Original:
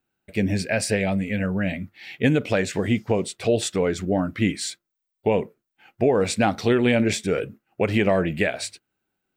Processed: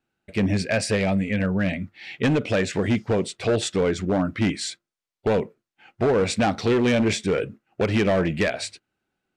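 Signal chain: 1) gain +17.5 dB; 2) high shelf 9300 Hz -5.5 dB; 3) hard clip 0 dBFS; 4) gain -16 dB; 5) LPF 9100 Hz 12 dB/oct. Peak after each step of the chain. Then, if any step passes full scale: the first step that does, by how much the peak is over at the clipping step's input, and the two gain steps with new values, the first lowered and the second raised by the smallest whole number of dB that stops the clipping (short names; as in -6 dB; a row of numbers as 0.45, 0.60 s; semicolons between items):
+8.0, +8.0, 0.0, -16.0, -15.0 dBFS; step 1, 8.0 dB; step 1 +9.5 dB, step 4 -8 dB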